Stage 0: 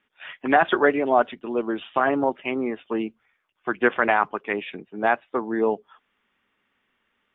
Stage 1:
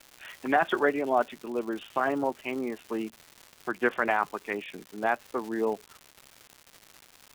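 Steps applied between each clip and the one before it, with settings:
surface crackle 320 per second −31 dBFS
level −6 dB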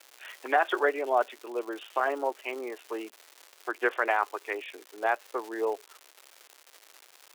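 inverse Chebyshev high-pass filter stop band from 180 Hz, stop band 40 dB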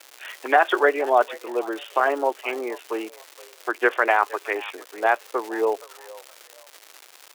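echo with shifted repeats 469 ms, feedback 30%, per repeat +73 Hz, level −20 dB
level +7 dB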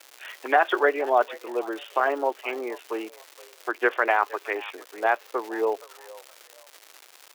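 dynamic equaliser 8,900 Hz, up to −6 dB, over −49 dBFS, Q 1.1
level −2.5 dB

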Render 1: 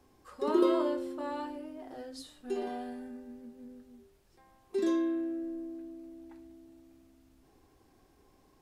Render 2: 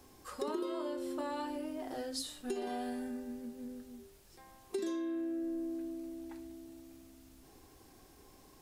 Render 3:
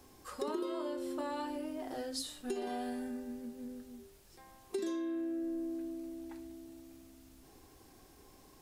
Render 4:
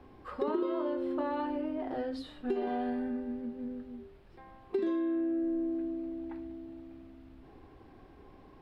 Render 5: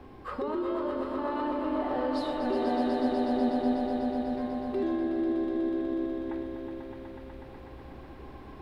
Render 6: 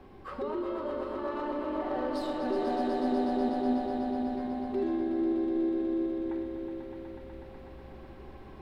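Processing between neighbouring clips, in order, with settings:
high-shelf EQ 3,800 Hz +9 dB; downward compressor 12 to 1, threshold −38 dBFS, peak gain reduction 18 dB; level +4 dB
no processing that can be heard
high-frequency loss of the air 440 metres; level +6.5 dB
brickwall limiter −30.5 dBFS, peak gain reduction 9.5 dB; echo that builds up and dies away 123 ms, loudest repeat 5, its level −7.5 dB; level +6 dB
stylus tracing distortion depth 0.033 ms; convolution reverb RT60 2.0 s, pre-delay 5 ms, DRR 6 dB; level −3.5 dB

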